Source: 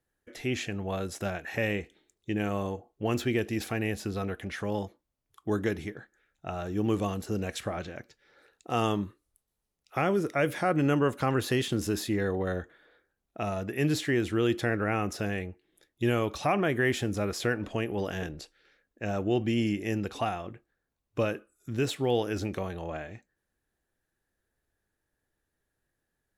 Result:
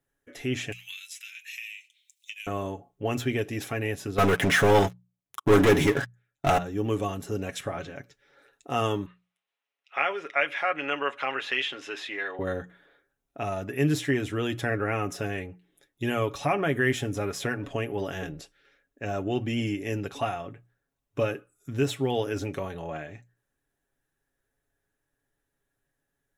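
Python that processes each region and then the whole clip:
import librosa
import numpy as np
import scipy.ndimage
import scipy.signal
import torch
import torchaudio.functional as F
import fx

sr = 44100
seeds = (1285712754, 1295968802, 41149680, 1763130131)

y = fx.chain(x, sr, fx.ellip_highpass(hz=2400.0, order=4, stop_db=80),
    fx.band_squash(depth_pct=100), at=(0.72, 2.47))
y = fx.chain(y, sr, fx.highpass(hz=100.0, slope=6),
    fx.leveller(passes=5), at=(4.18, 6.58))
y = fx.chain(y, sr, fx.bandpass_edges(low_hz=700.0, high_hz=3500.0),
    fx.peak_eq(hz=2600.0, db=9.5, octaves=1.2), at=(9.06, 12.39))
y = fx.peak_eq(y, sr, hz=4500.0, db=-7.5, octaves=0.21)
y = fx.hum_notches(y, sr, base_hz=60, count=3)
y = y + 0.56 * np.pad(y, (int(7.2 * sr / 1000.0), 0))[:len(y)]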